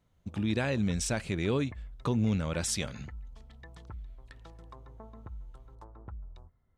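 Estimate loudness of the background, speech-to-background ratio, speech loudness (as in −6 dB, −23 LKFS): −49.5 LKFS, 18.0 dB, −31.5 LKFS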